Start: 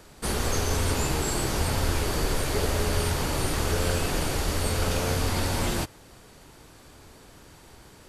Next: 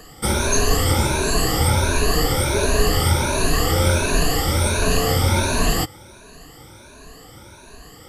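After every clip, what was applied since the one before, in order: moving spectral ripple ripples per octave 1.5, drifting +1.4 Hz, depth 19 dB; gain +4 dB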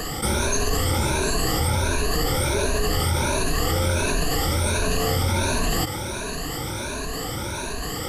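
fast leveller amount 70%; gain -8 dB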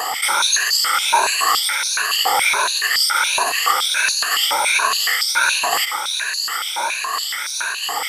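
wow and flutter 23 cents; stepped high-pass 7.1 Hz 860–4700 Hz; gain +6 dB

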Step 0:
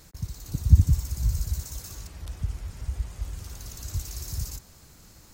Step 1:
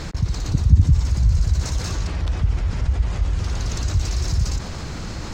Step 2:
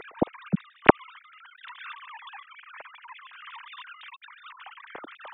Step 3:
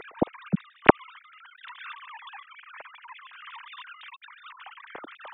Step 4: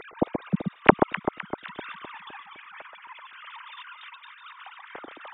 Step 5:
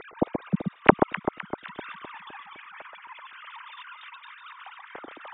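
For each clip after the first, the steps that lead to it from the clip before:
air absorption 140 m; fast leveller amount 50%; gain +1.5 dB
sine-wave speech; gain -12 dB
nothing audible
echo with dull and thin repeats by turns 0.128 s, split 1300 Hz, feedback 71%, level -6 dB
reverse; upward compressor, threshold -39 dBFS; reverse; air absorption 120 m

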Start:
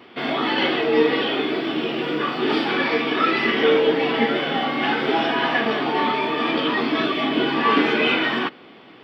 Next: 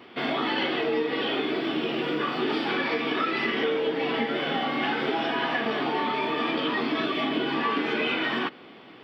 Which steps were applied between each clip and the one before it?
compressor, threshold -21 dBFS, peak gain reduction 9 dB; gain -2 dB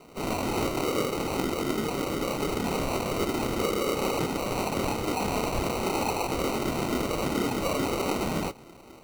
whisperiser; chorus voices 2, 0.62 Hz, delay 27 ms, depth 4.9 ms; sample-and-hold 26×; gain +1.5 dB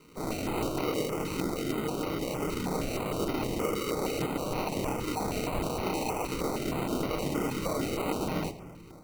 on a send at -10 dB: reverb RT60 1.8 s, pre-delay 6 ms; on the sum: stepped notch 6.4 Hz 700–8000 Hz; gain -3 dB

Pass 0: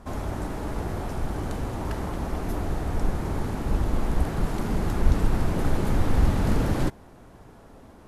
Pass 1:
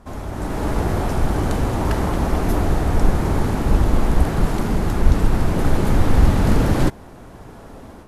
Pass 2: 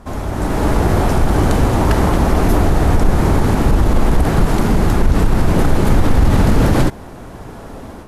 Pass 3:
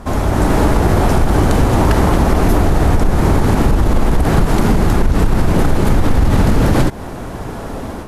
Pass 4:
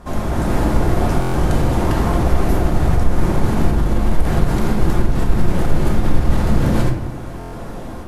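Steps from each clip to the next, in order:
AGC gain up to 10 dB
limiter -10.5 dBFS, peak gain reduction 8.5 dB; gain +7 dB
compressor, threshold -15 dBFS, peak gain reduction 8.5 dB; gain +7 dB
shoebox room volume 250 m³, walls mixed, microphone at 0.9 m; stuck buffer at 1.2/7.39, samples 1024, times 5; gain -8 dB

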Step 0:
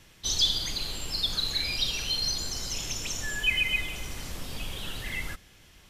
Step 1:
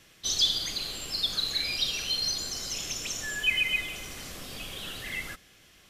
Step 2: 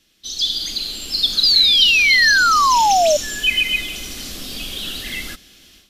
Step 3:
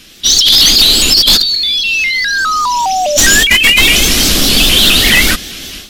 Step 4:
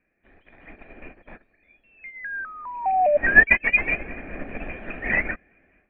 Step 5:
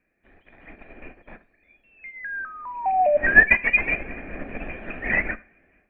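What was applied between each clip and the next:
low shelf 120 Hz -11.5 dB; notch 910 Hz, Q 7.3
graphic EQ 125/250/500/1000/2000/4000/8000 Hz -11/+4/-6/-8/-6/+4/-3 dB; AGC gain up to 14 dB; painted sound fall, 1.43–3.17, 580–5000 Hz -12 dBFS; gain -2 dB
negative-ratio compressor -24 dBFS, ratio -1; sine folder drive 9 dB, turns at -5 dBFS; shaped vibrato saw up 4.9 Hz, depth 160 cents; gain +3 dB
rippled Chebyshev low-pass 2500 Hz, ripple 9 dB; upward expander 2.5:1, over -26 dBFS; gain +2.5 dB
Schroeder reverb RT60 0.37 s, combs from 32 ms, DRR 16.5 dB

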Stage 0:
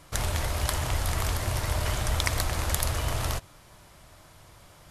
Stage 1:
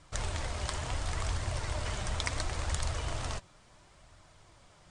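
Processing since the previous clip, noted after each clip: steep low-pass 9300 Hz 72 dB/oct; flange 0.72 Hz, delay 0.5 ms, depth 5.1 ms, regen +65%; gain -2 dB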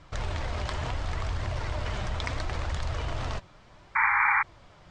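in parallel at -2.5 dB: negative-ratio compressor -37 dBFS; on the sum: painted sound noise, 3.95–4.43, 800–2400 Hz -22 dBFS; air absorption 140 m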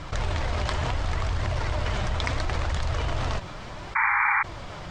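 short-mantissa float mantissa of 8-bit; fast leveller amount 50%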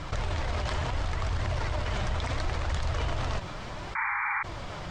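limiter -21 dBFS, peak gain reduction 10 dB

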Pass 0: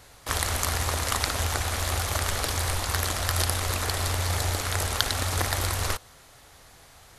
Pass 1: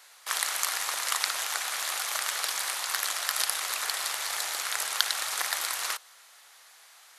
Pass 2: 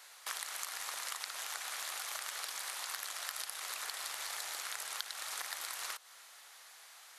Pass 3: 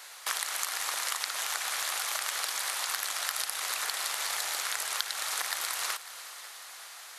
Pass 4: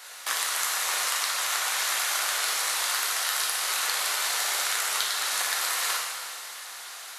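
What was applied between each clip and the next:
HPF 1100 Hz 12 dB/oct
compressor 5:1, threshold -37 dBFS, peak gain reduction 17 dB; gain -1.5 dB
multi-head echo 0.183 s, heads second and third, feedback 63%, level -18 dB; gain +8.5 dB
plate-style reverb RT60 1.6 s, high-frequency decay 0.95×, DRR -3 dB; gain +1 dB

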